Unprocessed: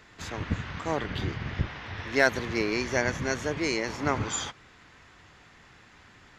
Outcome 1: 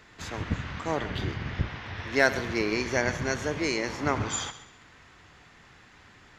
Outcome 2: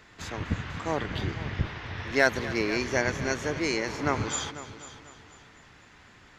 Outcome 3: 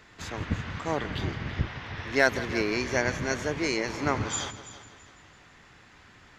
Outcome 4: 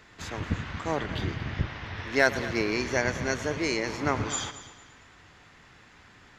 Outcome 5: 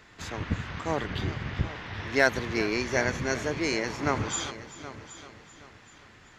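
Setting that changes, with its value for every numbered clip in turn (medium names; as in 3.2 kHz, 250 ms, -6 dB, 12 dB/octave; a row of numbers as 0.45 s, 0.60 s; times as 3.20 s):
multi-head delay, time: 66 ms, 247 ms, 166 ms, 113 ms, 386 ms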